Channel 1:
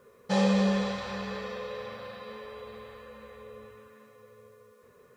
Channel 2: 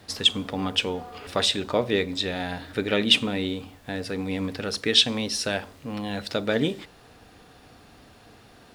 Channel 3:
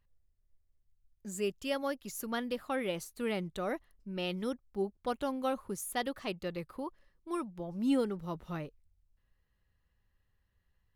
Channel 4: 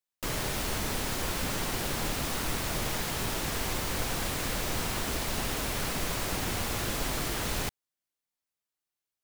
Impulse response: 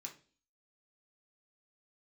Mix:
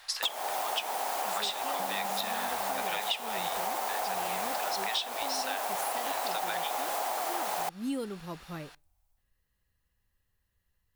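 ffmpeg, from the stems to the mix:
-filter_complex "[0:a]acompressor=threshold=0.0158:ratio=6,adelay=1500,volume=0.891[s0];[1:a]highpass=f=830:w=0.5412,highpass=f=830:w=1.3066,volume=1.33,asplit=2[s1][s2];[s2]volume=0.158[s3];[2:a]highshelf=f=5500:g=11.5,volume=0.794,asplit=2[s4][s5];[s5]volume=0.141[s6];[3:a]equalizer=f=3400:w=0.31:g=-7.5,dynaudnorm=f=120:g=3:m=2.24,highpass=f=760:t=q:w=4.9,volume=1.26[s7];[4:a]atrim=start_sample=2205[s8];[s3][s6]amix=inputs=2:normalize=0[s9];[s9][s8]afir=irnorm=-1:irlink=0[s10];[s0][s1][s4][s7][s10]amix=inputs=5:normalize=0,acompressor=threshold=0.0355:ratio=10"

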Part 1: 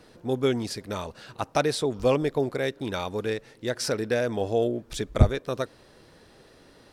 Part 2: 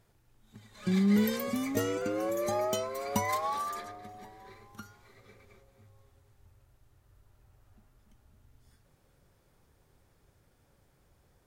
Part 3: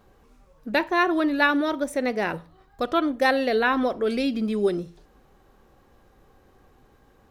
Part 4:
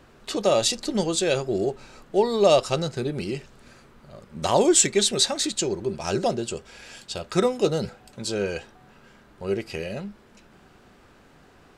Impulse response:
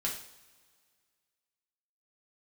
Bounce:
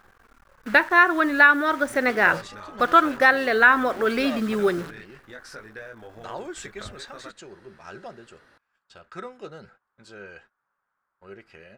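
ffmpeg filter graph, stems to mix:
-filter_complex "[0:a]flanger=delay=18:depth=2.2:speed=0.68,acompressor=threshold=0.00891:ratio=2.5,adelay=1650,volume=0.473[s0];[1:a]bandpass=f=1100:t=q:w=3:csg=0,volume=0.355[s1];[2:a]acrusher=bits=8:dc=4:mix=0:aa=0.000001,volume=0.944,asplit=2[s2][s3];[3:a]agate=range=0.0501:threshold=0.0112:ratio=16:detection=peak,highshelf=f=5000:g=-8,adelay=1800,volume=0.112[s4];[s3]apad=whole_len=505725[s5];[s1][s5]sidechaincompress=threshold=0.0316:ratio=8:attack=16:release=1000[s6];[s0][s6][s2][s4]amix=inputs=4:normalize=0,equalizer=f=1500:w=1.2:g=15,alimiter=limit=0.631:level=0:latency=1:release=492"

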